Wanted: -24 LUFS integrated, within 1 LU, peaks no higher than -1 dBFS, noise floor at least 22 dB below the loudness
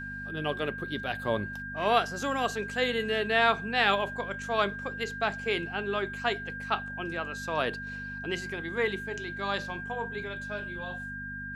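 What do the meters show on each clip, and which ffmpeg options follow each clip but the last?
hum 50 Hz; harmonics up to 250 Hz; hum level -41 dBFS; steady tone 1600 Hz; tone level -37 dBFS; loudness -30.5 LUFS; peak -9.5 dBFS; loudness target -24.0 LUFS
-> -af "bandreject=f=50:t=h:w=4,bandreject=f=100:t=h:w=4,bandreject=f=150:t=h:w=4,bandreject=f=200:t=h:w=4,bandreject=f=250:t=h:w=4"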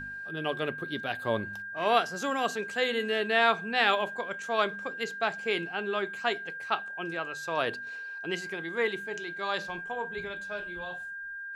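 hum none; steady tone 1600 Hz; tone level -37 dBFS
-> -af "bandreject=f=1.6k:w=30"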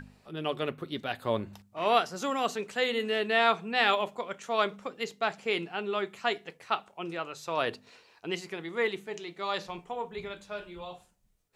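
steady tone none; loudness -31.0 LUFS; peak -10.0 dBFS; loudness target -24.0 LUFS
-> -af "volume=7dB"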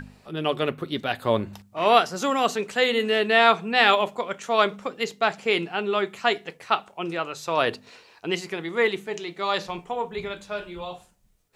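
loudness -24.0 LUFS; peak -3.0 dBFS; noise floor -59 dBFS

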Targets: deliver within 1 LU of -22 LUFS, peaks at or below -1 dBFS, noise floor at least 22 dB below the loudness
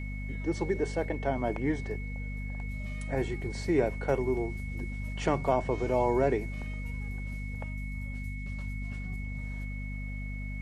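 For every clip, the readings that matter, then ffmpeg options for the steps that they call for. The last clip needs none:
hum 50 Hz; harmonics up to 250 Hz; hum level -34 dBFS; steady tone 2200 Hz; tone level -44 dBFS; loudness -33.0 LUFS; peak -13.0 dBFS; loudness target -22.0 LUFS
-> -af "bandreject=f=50:t=h:w=4,bandreject=f=100:t=h:w=4,bandreject=f=150:t=h:w=4,bandreject=f=200:t=h:w=4,bandreject=f=250:t=h:w=4"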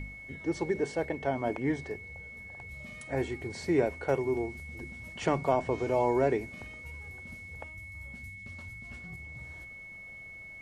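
hum none; steady tone 2200 Hz; tone level -44 dBFS
-> -af "bandreject=f=2.2k:w=30"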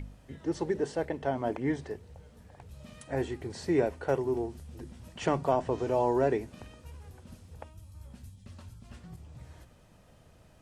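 steady tone none; loudness -31.5 LUFS; peak -14.0 dBFS; loudness target -22.0 LUFS
-> -af "volume=9.5dB"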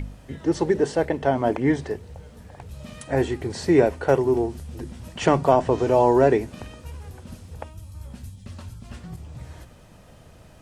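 loudness -22.0 LUFS; peak -4.5 dBFS; noise floor -49 dBFS

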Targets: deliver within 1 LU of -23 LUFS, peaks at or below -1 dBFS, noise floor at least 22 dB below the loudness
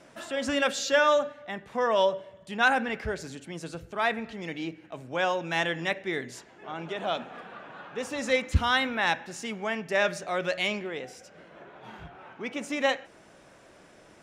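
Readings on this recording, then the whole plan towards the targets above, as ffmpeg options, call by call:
loudness -28.5 LUFS; peak -9.5 dBFS; loudness target -23.0 LUFS
-> -af "volume=5.5dB"

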